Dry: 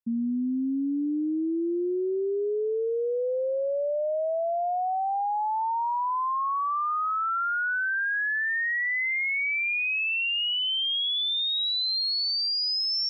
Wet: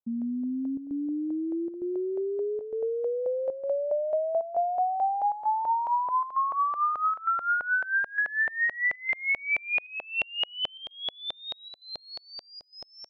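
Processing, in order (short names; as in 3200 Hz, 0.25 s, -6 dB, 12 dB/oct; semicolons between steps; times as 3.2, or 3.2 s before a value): 0.49–2.21 high shelf 3700 Hz -12 dB; LFO low-pass saw up 4.6 Hz 640–2900 Hz; chopper 1.1 Hz, depth 65%, duty 85%; gain -3.5 dB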